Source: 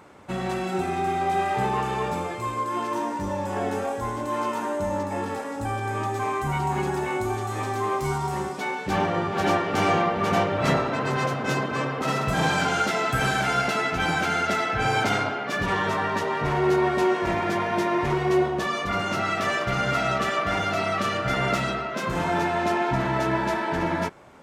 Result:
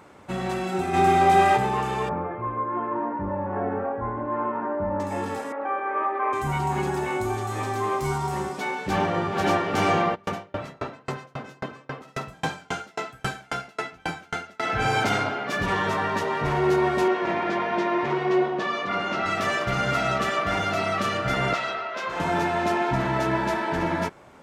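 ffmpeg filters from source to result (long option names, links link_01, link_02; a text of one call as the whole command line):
ffmpeg -i in.wav -filter_complex "[0:a]asplit=3[link_01][link_02][link_03];[link_01]afade=type=out:start_time=0.93:duration=0.02[link_04];[link_02]acontrast=85,afade=type=in:start_time=0.93:duration=0.02,afade=type=out:start_time=1.56:duration=0.02[link_05];[link_03]afade=type=in:start_time=1.56:duration=0.02[link_06];[link_04][link_05][link_06]amix=inputs=3:normalize=0,asettb=1/sr,asplit=3[link_07][link_08][link_09];[link_07]atrim=end=2.094[link_10];[link_08]atrim=start=2.09:end=5,asetpts=PTS-STARTPTS,afade=type=in:duration=0.004:curve=qsin,afade=type=out:start_time=2.906:duration=0.004:curve=qsin,lowpass=frequency=1700:width=0.5412,lowpass=frequency=1700:width=1.3066[link_11];[link_09]atrim=start=4.996[link_12];[link_10][link_11]acrossfade=duration=0.004:curve1=hsin:curve2=qsin[link_13];[link_13][link_12]acrossfade=duration=0.004:curve1=qsin:curve2=hsin,asettb=1/sr,asplit=3[link_14][link_15][link_16];[link_14]atrim=end=5.524[link_17];[link_15]atrim=start=5.52:end=6.33,asetpts=PTS-STARTPTS,afade=type=in:duration=0.004:curve=qsin,afade=type=out:start_time=0.806:duration=0.004:curve=qsin,highpass=frequency=340:width=0.5412,highpass=frequency=340:width=1.3066,equalizer=frequency=570:width_type=q:width=4:gain=5,equalizer=frequency=1200:width_type=q:width=4:gain=7,equalizer=frequency=2100:width_type=q:width=4:gain=4,lowpass=frequency=2200:width=0.5412,lowpass=frequency=2200:width=1.3066[link_18];[link_16]atrim=start=6.326[link_19];[link_17][link_18]acrossfade=duration=0.004:curve1=hsin:curve2=qsin[link_20];[link_20][link_19]acrossfade=duration=0.004:curve1=qsin:curve2=hsin,asplit=3[link_21][link_22][link_23];[link_21]afade=type=out:start_time=10.14:duration=0.02[link_24];[link_22]aeval=exprs='val(0)*pow(10,-36*if(lt(mod(3.7*n/s,1),2*abs(3.7)/1000),1-mod(3.7*n/s,1)/(2*abs(3.7)/1000),(mod(3.7*n/s,1)-2*abs(3.7)/1000)/(1-2*abs(3.7)/1000))/20)':channel_layout=same,afade=type=in:start_time=10.14:duration=0.02,afade=type=out:start_time=14.62:duration=0.02[link_25];[link_23]afade=type=in:start_time=14.62:duration=0.02[link_26];[link_24][link_25][link_26]amix=inputs=3:normalize=0,asettb=1/sr,asplit=3[link_27][link_28][link_29];[link_27]atrim=end=17.084[link_30];[link_28]atrim=start=17.08:end=19.26,asetpts=PTS-STARTPTS,afade=type=in:duration=0.004:curve=qsin,afade=type=out:start_time=2.176:duration=0.004:curve=qsin,highpass=200,lowpass=4200[link_31];[link_29]atrim=start=19.256[link_32];[link_30][link_31]acrossfade=duration=0.004:curve1=hsin:curve2=qsin[link_33];[link_33][link_32]acrossfade=duration=0.004:curve1=qsin:curve2=hsin,asettb=1/sr,asplit=3[link_34][link_35][link_36];[link_34]atrim=end=21.534[link_37];[link_35]atrim=start=21.53:end=22.2,asetpts=PTS-STARTPTS,afade=type=in:duration=0.004:curve=qsin,afade=type=out:start_time=0.666:duration=0.004:curve=qsin,acrossover=split=440 5900:gain=0.126 1 0.178[link_38][link_39][link_40];[link_38][link_39][link_40]amix=inputs=3:normalize=0[link_41];[link_36]atrim=start=22.196[link_42];[link_37][link_41]acrossfade=duration=0.004:curve1=hsin:curve2=qsin[link_43];[link_43][link_42]acrossfade=duration=0.004:curve1=qsin:curve2=hsin" out.wav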